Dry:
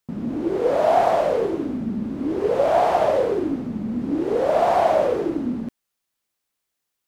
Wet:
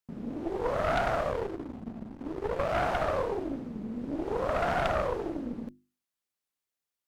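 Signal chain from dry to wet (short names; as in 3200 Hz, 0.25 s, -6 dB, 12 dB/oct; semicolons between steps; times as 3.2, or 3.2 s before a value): 1.3–2.77 backlash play -22 dBFS; notches 50/100/150/200/250/300/350 Hz; added harmonics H 3 -7 dB, 4 -12 dB, 5 -9 dB, 7 -22 dB, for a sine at -6 dBFS; gain -8.5 dB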